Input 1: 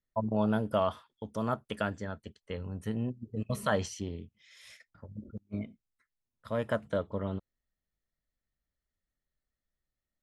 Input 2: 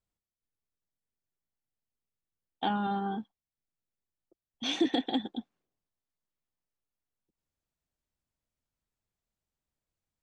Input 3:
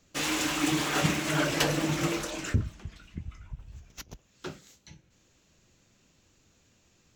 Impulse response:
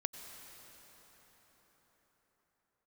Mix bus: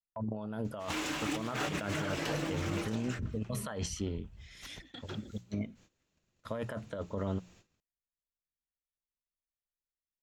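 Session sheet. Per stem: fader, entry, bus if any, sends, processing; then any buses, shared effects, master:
−0.5 dB, 0.00 s, no send, mains-hum notches 60/120/180 Hz
−16.0 dB, 0.00 s, no send, volume swells 138 ms; flat-topped bell 520 Hz −10 dB 2.4 octaves
−8.0 dB, 0.65 s, no send, high-shelf EQ 5,600 Hz −7.5 dB; mains-hum notches 60/120/180/240/300 Hz; upward compression, threshold −45 dBFS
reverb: not used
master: noise gate −60 dBFS, range −19 dB; compressor whose output falls as the input rises −35 dBFS, ratio −1

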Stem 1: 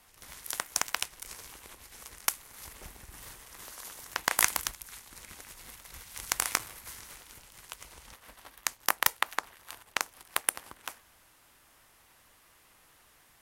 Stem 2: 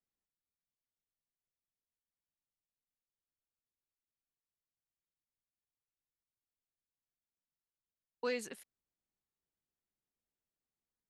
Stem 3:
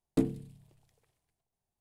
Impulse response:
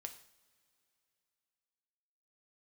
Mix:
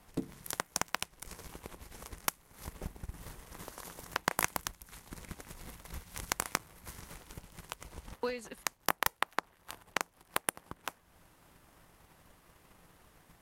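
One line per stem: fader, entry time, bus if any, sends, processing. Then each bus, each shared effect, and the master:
+0.5 dB, 0.00 s, no send, tilt shelving filter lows +6 dB
+2.5 dB, 0.00 s, no send, no processing
−10.5 dB, 0.00 s, no send, no processing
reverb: not used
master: parametric band 170 Hz +7.5 dB 0.25 octaves; transient designer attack +8 dB, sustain −3 dB; downward compressor 1.5 to 1, threshold −43 dBFS, peak gain reduction 11 dB

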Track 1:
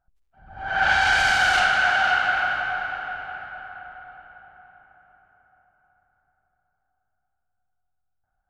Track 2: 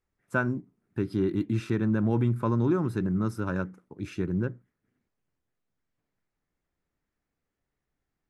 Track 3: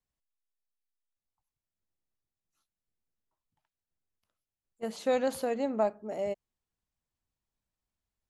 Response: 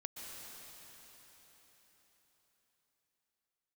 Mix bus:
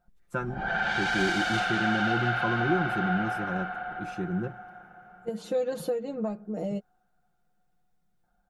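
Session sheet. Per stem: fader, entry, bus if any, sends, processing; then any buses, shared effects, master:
+1.0 dB, 0.00 s, bus A, no send, no processing
−5.5 dB, 0.00 s, no bus, send −21 dB, no processing
−3.5 dB, 0.45 s, bus A, no send, harmonic and percussive parts rebalanced harmonic −4 dB; low-shelf EQ 370 Hz +7.5 dB; comb filter 6.4 ms, depth 79%
bus A: 0.0 dB, hollow resonant body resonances 220/430/3,600 Hz, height 14 dB, ringing for 45 ms; downward compressor 6 to 1, threshold −27 dBFS, peak gain reduction 13 dB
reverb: on, RT60 4.6 s, pre-delay 113 ms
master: comb filter 5.7 ms

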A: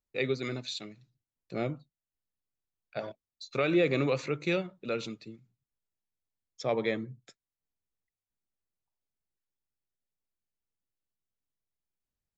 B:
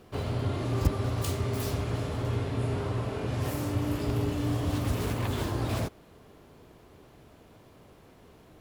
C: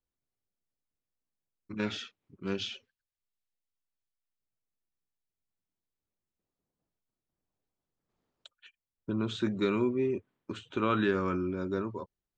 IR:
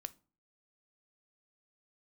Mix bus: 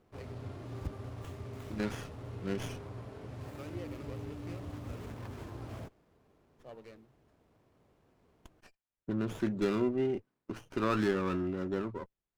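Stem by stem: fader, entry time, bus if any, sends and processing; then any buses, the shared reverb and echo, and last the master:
−19.5 dB, 0.00 s, no send, automatic ducking −16 dB, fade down 1.80 s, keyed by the third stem
−13.5 dB, 0.00 s, no send, no processing
−1.5 dB, 0.00 s, no send, no processing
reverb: not used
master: windowed peak hold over 9 samples

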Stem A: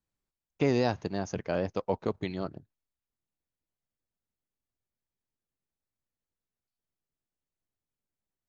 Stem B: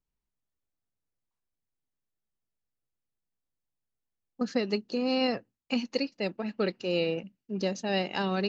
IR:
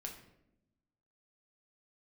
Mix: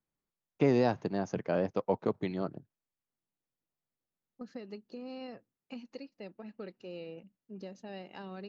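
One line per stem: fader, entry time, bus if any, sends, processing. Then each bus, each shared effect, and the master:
+0.5 dB, 0.00 s, no send, high-pass filter 120 Hz 24 dB per octave
−10.5 dB, 0.00 s, no send, downward compressor 2 to 1, threshold −32 dBFS, peak gain reduction 6 dB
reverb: not used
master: high-shelf EQ 2,800 Hz −9.5 dB

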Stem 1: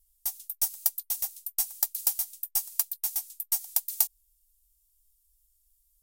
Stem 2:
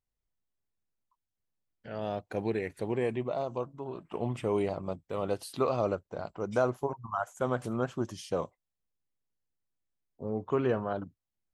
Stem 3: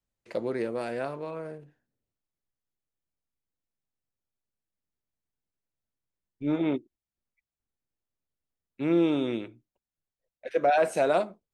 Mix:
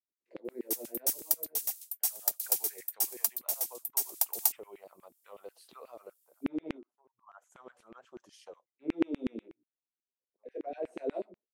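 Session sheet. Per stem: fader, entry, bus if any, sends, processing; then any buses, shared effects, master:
−2.5 dB, 0.45 s, no send, no processing
0:01.82 −22.5 dB → 0:02.40 −13 dB, 0.15 s, no send, downward compressor 6 to 1, threshold −34 dBFS, peak gain reduction 12 dB; automatic ducking −23 dB, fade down 0.30 s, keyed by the third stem
−6.5 dB, 0.00 s, no send, drawn EQ curve 140 Hz 0 dB, 280 Hz +10 dB, 1,300 Hz −25 dB, 1,900 Hz −17 dB; micro pitch shift up and down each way 21 cents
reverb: not used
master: parametric band 300 Hz −5.5 dB 0.22 octaves; auto-filter high-pass saw down 8.2 Hz 270–2,500 Hz

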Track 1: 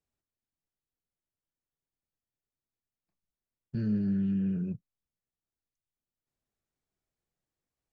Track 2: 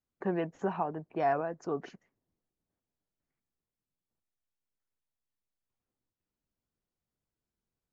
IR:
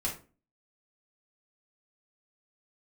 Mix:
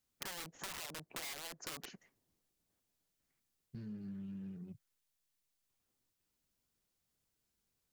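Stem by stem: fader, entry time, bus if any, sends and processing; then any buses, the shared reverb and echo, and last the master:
−13.0 dB, 0.00 s, no send, adaptive Wiener filter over 41 samples; reverb reduction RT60 0.5 s
+1.0 dB, 0.00 s, no send, brickwall limiter −30 dBFS, peak gain reduction 11 dB; wrap-around overflow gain 35 dB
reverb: not used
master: high-shelf EQ 2,100 Hz +10 dB; downward compressor 4 to 1, threshold −43 dBFS, peak gain reduction 13.5 dB

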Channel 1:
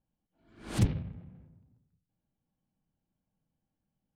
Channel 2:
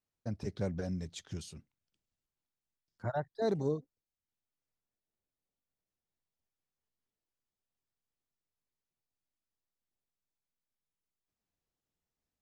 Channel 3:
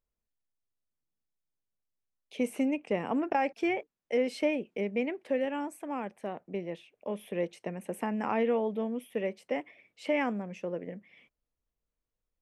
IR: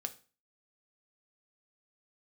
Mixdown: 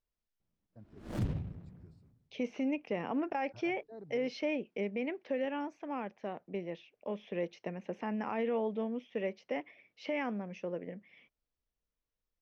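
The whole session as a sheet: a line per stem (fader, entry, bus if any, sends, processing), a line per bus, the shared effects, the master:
−1.0 dB, 0.40 s, no send, windowed peak hold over 33 samples
−17.0 dB, 0.50 s, no send, bit reduction 10 bits; moving average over 14 samples
−2.0 dB, 0.00 s, no send, elliptic low-pass filter 5,900 Hz, stop band 40 dB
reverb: not used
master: brickwall limiter −25 dBFS, peak gain reduction 8.5 dB

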